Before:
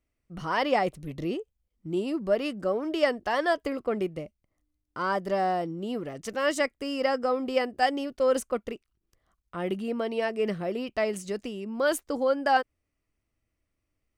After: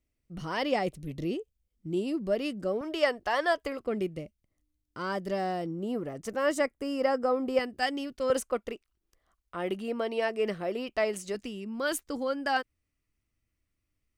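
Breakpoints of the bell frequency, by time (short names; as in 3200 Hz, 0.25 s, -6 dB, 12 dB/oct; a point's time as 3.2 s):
bell -7.5 dB 1.8 oct
1100 Hz
from 2.81 s 220 Hz
from 3.82 s 960 Hz
from 5.66 s 3500 Hz
from 7.59 s 650 Hz
from 8.3 s 130 Hz
from 11.35 s 630 Hz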